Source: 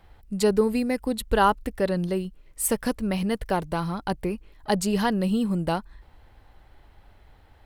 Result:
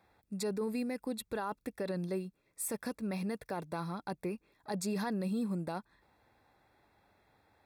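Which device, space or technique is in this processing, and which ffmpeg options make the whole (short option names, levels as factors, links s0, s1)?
PA system with an anti-feedback notch: -af "highpass=150,asuperstop=centerf=3000:order=20:qfactor=6.8,alimiter=limit=0.112:level=0:latency=1:release=13,volume=0.376"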